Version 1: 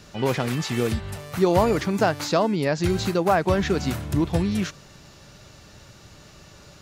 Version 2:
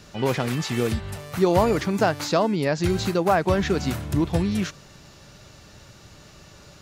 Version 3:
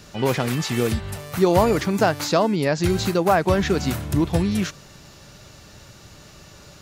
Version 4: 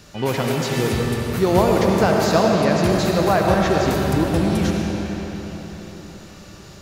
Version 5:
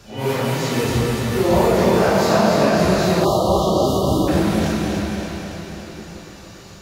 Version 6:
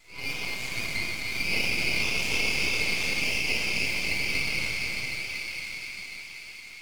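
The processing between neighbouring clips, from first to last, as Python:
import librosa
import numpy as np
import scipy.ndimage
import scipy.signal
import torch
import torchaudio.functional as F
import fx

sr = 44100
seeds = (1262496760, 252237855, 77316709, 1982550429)

y1 = x
y2 = fx.high_shelf(y1, sr, hz=10000.0, db=6.0)
y2 = y2 * librosa.db_to_amplitude(2.0)
y3 = fx.rev_freeverb(y2, sr, rt60_s=4.5, hf_ratio=0.75, predelay_ms=40, drr_db=-1.0)
y3 = y3 * librosa.db_to_amplitude(-1.0)
y4 = fx.phase_scramble(y3, sr, seeds[0], window_ms=200)
y4 = fx.echo_thinned(y4, sr, ms=284, feedback_pct=61, hz=320.0, wet_db=-5)
y4 = fx.spec_erase(y4, sr, start_s=3.25, length_s=1.03, low_hz=1300.0, high_hz=2800.0)
y5 = fx.band_swap(y4, sr, width_hz=2000)
y5 = np.maximum(y5, 0.0)
y5 = fx.echo_wet_highpass(y5, sr, ms=1004, feedback_pct=36, hz=1500.0, wet_db=-5.5)
y5 = y5 * librosa.db_to_amplitude(-8.0)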